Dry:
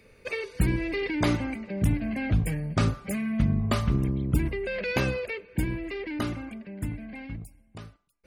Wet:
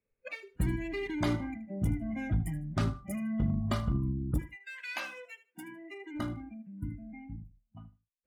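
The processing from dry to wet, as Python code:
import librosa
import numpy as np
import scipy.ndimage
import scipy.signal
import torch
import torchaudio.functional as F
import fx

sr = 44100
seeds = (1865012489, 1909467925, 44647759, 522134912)

y = fx.wiener(x, sr, points=9)
y = fx.highpass(y, sr, hz=fx.line((4.39, 1300.0), (6.13, 340.0)), slope=12, at=(4.39, 6.13), fade=0.02)
y = fx.noise_reduce_blind(y, sr, reduce_db=25)
y = np.clip(y, -10.0 ** (-16.0 / 20.0), 10.0 ** (-16.0 / 20.0))
y = fx.echo_feedback(y, sr, ms=77, feedback_pct=19, wet_db=-16.0)
y = y * librosa.db_to_amplitude(-5.5)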